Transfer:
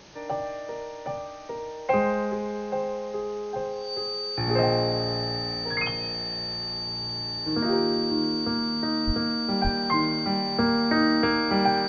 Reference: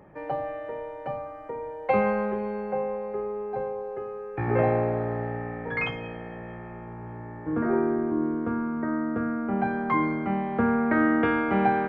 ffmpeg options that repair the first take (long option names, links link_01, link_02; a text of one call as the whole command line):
ffmpeg -i in.wav -filter_complex "[0:a]bandreject=frequency=4600:width=30,asplit=3[link_01][link_02][link_03];[link_01]afade=type=out:start_time=9.06:duration=0.02[link_04];[link_02]highpass=frequency=140:width=0.5412,highpass=frequency=140:width=1.3066,afade=type=in:start_time=9.06:duration=0.02,afade=type=out:start_time=9.18:duration=0.02[link_05];[link_03]afade=type=in:start_time=9.18:duration=0.02[link_06];[link_04][link_05][link_06]amix=inputs=3:normalize=0,asplit=3[link_07][link_08][link_09];[link_07]afade=type=out:start_time=9.63:duration=0.02[link_10];[link_08]highpass=frequency=140:width=0.5412,highpass=frequency=140:width=1.3066,afade=type=in:start_time=9.63:duration=0.02,afade=type=out:start_time=9.75:duration=0.02[link_11];[link_09]afade=type=in:start_time=9.75:duration=0.02[link_12];[link_10][link_11][link_12]amix=inputs=3:normalize=0,afwtdn=0.004" out.wav